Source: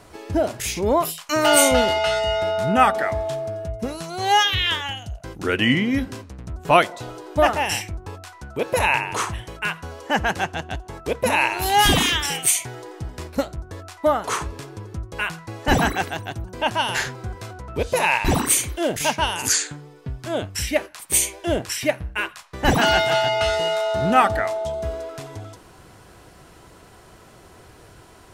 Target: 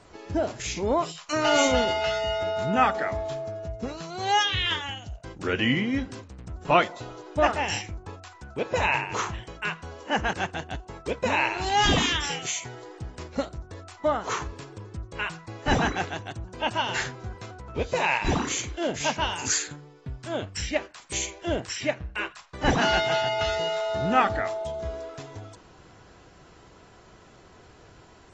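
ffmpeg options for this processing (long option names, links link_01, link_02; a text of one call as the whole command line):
ffmpeg -i in.wav -af "volume=-5.5dB" -ar 24000 -c:a aac -b:a 24k out.aac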